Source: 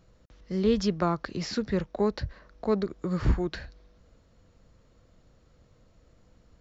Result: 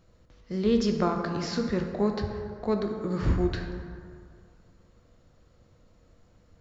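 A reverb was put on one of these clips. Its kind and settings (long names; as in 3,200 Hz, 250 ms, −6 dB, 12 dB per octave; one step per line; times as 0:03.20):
dense smooth reverb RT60 2.2 s, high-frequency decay 0.45×, DRR 3.5 dB
level −1 dB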